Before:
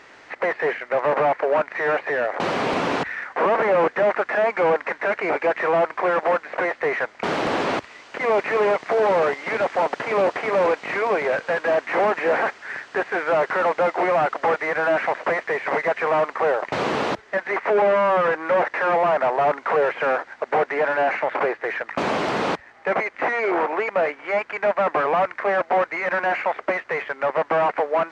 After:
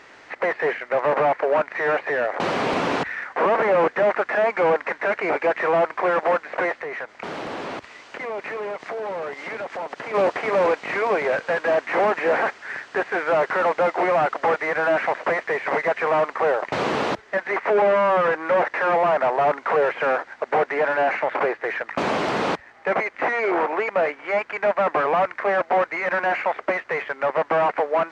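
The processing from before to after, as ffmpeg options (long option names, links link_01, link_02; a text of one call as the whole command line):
ffmpeg -i in.wav -filter_complex "[0:a]asplit=3[link_01][link_02][link_03];[link_01]afade=type=out:start_time=6.79:duration=0.02[link_04];[link_02]acompressor=threshold=-30dB:ratio=3:attack=3.2:release=140:knee=1:detection=peak,afade=type=in:start_time=6.79:duration=0.02,afade=type=out:start_time=10.13:duration=0.02[link_05];[link_03]afade=type=in:start_time=10.13:duration=0.02[link_06];[link_04][link_05][link_06]amix=inputs=3:normalize=0" out.wav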